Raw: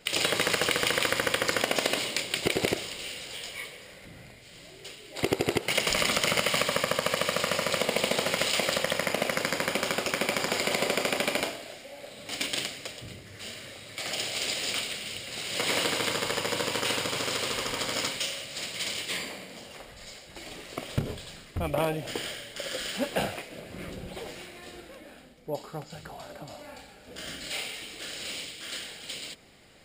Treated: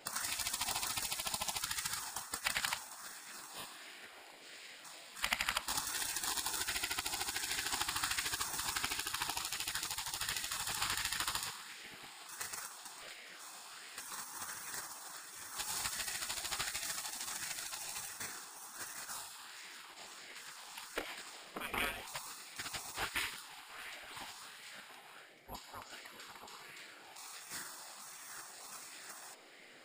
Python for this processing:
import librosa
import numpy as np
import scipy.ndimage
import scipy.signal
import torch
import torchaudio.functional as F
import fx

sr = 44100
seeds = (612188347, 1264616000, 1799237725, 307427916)

y = fx.add_hum(x, sr, base_hz=50, snr_db=18)
y = fx.spec_gate(y, sr, threshold_db=-15, keep='weak')
y = fx.bell_lfo(y, sr, hz=1.4, low_hz=820.0, high_hz=2100.0, db=7)
y = y * librosa.db_to_amplitude(-2.5)